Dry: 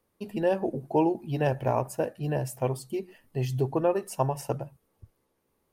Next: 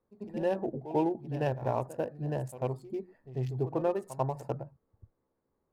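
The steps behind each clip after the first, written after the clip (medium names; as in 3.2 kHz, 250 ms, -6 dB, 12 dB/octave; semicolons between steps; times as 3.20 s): local Wiener filter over 15 samples; pre-echo 94 ms -14.5 dB; trim -4.5 dB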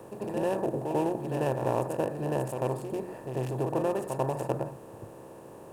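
spectral levelling over time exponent 0.4; treble shelf 7.1 kHz +8 dB; trim -3 dB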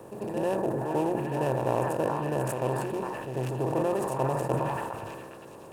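on a send: repeats whose band climbs or falls 408 ms, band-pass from 1.2 kHz, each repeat 0.7 oct, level -1 dB; on the sum: decay stretcher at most 28 dB/s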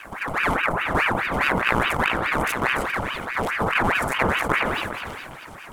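ring modulator with a swept carrier 1.2 kHz, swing 75%, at 4.8 Hz; trim +8.5 dB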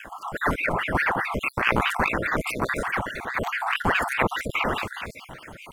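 random holes in the spectrogram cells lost 47%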